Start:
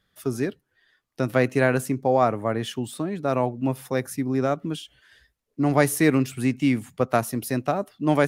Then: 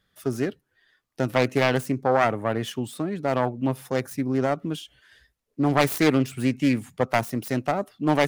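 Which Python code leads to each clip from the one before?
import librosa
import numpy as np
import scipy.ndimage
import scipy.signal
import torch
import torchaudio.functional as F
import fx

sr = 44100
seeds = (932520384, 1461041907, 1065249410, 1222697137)

y = fx.self_delay(x, sr, depth_ms=0.38)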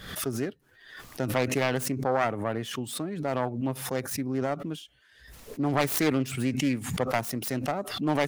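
y = fx.pre_swell(x, sr, db_per_s=70.0)
y = F.gain(torch.from_numpy(y), -5.5).numpy()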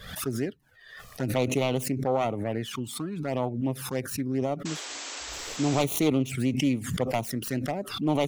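y = fx.env_flanger(x, sr, rest_ms=2.0, full_db=-23.5)
y = fx.spec_paint(y, sr, seeds[0], shape='noise', start_s=4.65, length_s=1.18, low_hz=240.0, high_hz=8100.0, level_db=-40.0)
y = F.gain(torch.from_numpy(y), 2.0).numpy()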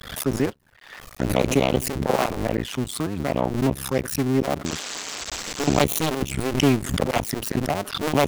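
y = fx.cycle_switch(x, sr, every=2, mode='muted')
y = F.gain(torch.from_numpy(y), 8.0).numpy()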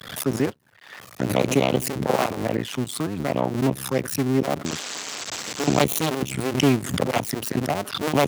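y = scipy.signal.sosfilt(scipy.signal.butter(4, 93.0, 'highpass', fs=sr, output='sos'), x)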